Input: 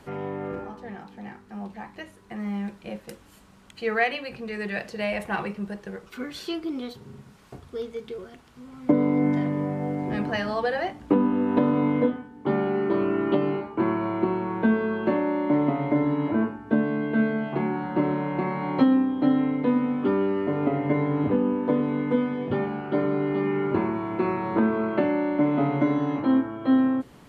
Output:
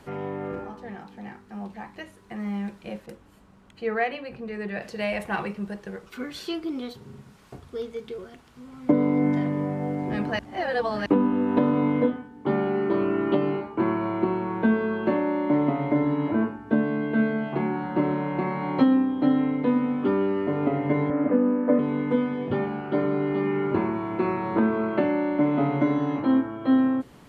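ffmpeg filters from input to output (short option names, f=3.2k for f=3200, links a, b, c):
-filter_complex "[0:a]asettb=1/sr,asplit=3[a][b][c];[a]atrim=end=3.064[d];[b]atrim=start=3.06:end=4.82,asetpts=PTS-STARTPTS,afade=t=in:d=0.004:c=qsin,afade=t=out:st=1.756:d=0.004:c=qsin,highshelf=f=2.1k:g=-10.5[e];[c]atrim=start=4.816[f];[d][e]acrossfade=d=0.004:c1=hsin:c2=qsin[g];[g][f]acrossfade=d=0.004:c1=qsin:c2=hsin,asettb=1/sr,asplit=3[h][i][j];[h]atrim=end=21.104[k];[i]atrim=start=21.1:end=21.79,asetpts=PTS-STARTPTS,afade=t=in:d=0.004:c=qsin,afade=t=out:st=0.686:d=0.004:c=qsin,highpass=250,equalizer=f=260:t=q:w=4:g=8,equalizer=f=390:t=q:w=4:g=-9,equalizer=f=570:t=q:w=4:g=10,equalizer=f=890:t=q:w=4:g=-6,equalizer=f=1.3k:t=q:w=4:g=3,equalizer=f=1.9k:t=q:w=4:g=3,lowpass=f=2.2k:w=0.5412,lowpass=f=2.2k:w=1.3066[l];[j]atrim=start=21.786[m];[k][l]acrossfade=d=0.004:c1=hsin:c2=qsin[n];[n][m]acrossfade=d=0.004:c1=qsin:c2=hsin,asplit=3[o][p][q];[o]atrim=end=10.392[r];[p]atrim=start=10.388:end=11.062,asetpts=PTS-STARTPTS,areverse[s];[q]atrim=start=11.058[t];[r][s]acrossfade=d=0.004:c1=hsin:c2=hsin[u];[u][t]acrossfade=d=0.004:c1=hsin:c2=hsin"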